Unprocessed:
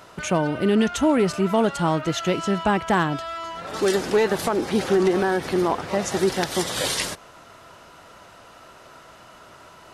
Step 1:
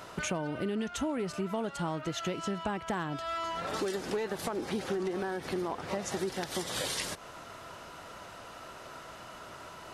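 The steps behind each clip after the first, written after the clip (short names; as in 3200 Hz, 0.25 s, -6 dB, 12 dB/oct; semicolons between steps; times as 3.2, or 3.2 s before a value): compressor 5:1, threshold -32 dBFS, peak gain reduction 15 dB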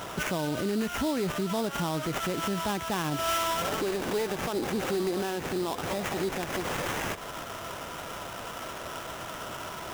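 limiter -30.5 dBFS, peak gain reduction 10 dB; sample-rate reducer 4400 Hz, jitter 20%; gain +8.5 dB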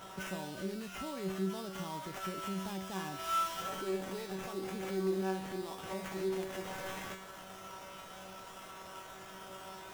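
resonator 190 Hz, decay 0.62 s, harmonics all, mix 90%; gain +3 dB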